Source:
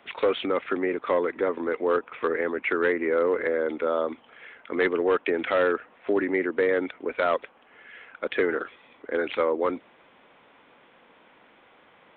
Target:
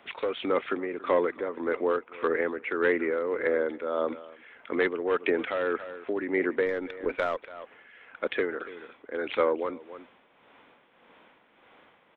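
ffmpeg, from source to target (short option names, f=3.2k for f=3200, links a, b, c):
-filter_complex "[0:a]aecho=1:1:283:0.126,asettb=1/sr,asplit=3[a][b][c];[a]atrim=end=6.664[d];[b]atrim=start=6.66:end=8.16,asetpts=PTS-STARTPTS,afade=t=in:d=0.004:c=qsin,afade=t=out:st=1.496:d=0.004:c=qsin,aeval=exprs='0.224*(cos(1*acos(clip(val(0)/0.224,-1,1)))-cos(1*PI/2))+0.00562*(cos(6*acos(clip(val(0)/0.224,-1,1)))-cos(6*PI/2))':c=same[e];[c]atrim=start=8.156[f];[d][e]acrossfade=d=0.004:c1=hsin:c2=qsin[g];[g][f]acrossfade=d=0.004:c1=qsin:c2=hsin,tremolo=f=1.7:d=0.57"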